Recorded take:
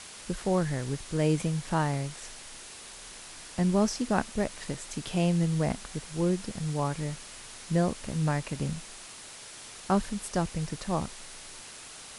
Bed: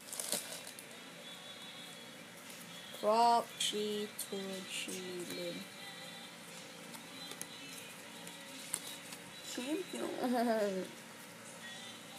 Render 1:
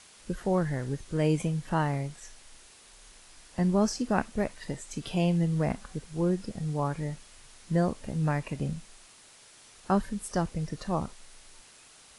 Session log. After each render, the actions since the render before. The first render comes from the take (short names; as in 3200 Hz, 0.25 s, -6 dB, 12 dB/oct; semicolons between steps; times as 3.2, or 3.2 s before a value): noise print and reduce 9 dB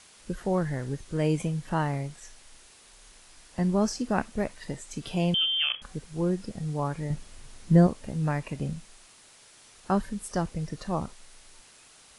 5.34–5.82 inverted band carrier 3300 Hz; 7.1–7.87 low shelf 440 Hz +10 dB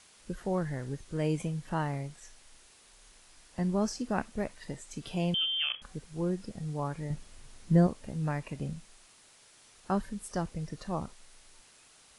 gain -4.5 dB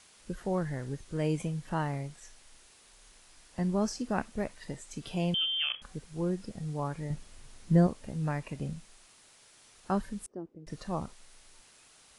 10.26–10.67 band-pass 330 Hz, Q 3.5